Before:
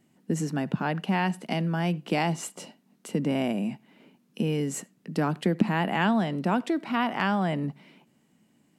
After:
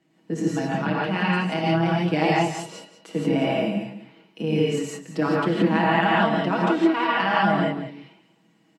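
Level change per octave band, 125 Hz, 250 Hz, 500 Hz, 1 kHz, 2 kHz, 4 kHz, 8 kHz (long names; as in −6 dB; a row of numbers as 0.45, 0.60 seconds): +3.0, +4.0, +7.5, +7.0, +7.0, +6.0, −1.5 decibels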